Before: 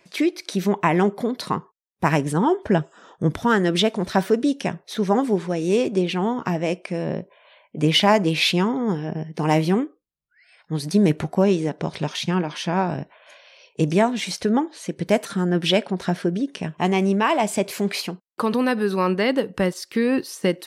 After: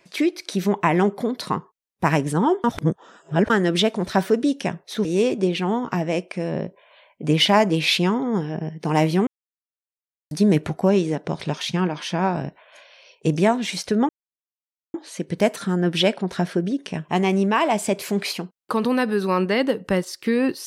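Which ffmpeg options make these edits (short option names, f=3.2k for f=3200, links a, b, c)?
-filter_complex "[0:a]asplit=7[a][b][c][d][e][f][g];[a]atrim=end=2.642[h];[b]atrim=start=2.638:end=3.502,asetpts=PTS-STARTPTS,areverse[i];[c]atrim=start=3.498:end=5.052[j];[d]atrim=start=5.588:end=9.81,asetpts=PTS-STARTPTS,afade=t=out:st=4.218:d=0.004:c=hsin[k];[e]atrim=start=9.81:end=10.85,asetpts=PTS-STARTPTS,volume=0[l];[f]atrim=start=10.85:end=14.63,asetpts=PTS-STARTPTS,afade=t=in:d=0.004:c=hsin,afade=t=out:st=3.776:d=0.004:c=hsin,apad=pad_dur=0.85[m];[g]atrim=start=14.63,asetpts=PTS-STARTPTS,afade=t=in:d=0.004:c=hsin[n];[h][i]acrossfade=d=0.004:c1=hsin:c2=hsin[o];[o][j]acrossfade=d=0.004:c1=hsin:c2=hsin[p];[k][l][m][n]concat=n=4:v=0:a=1[q];[p][q]acrossfade=d=0.004:c1=hsin:c2=hsin"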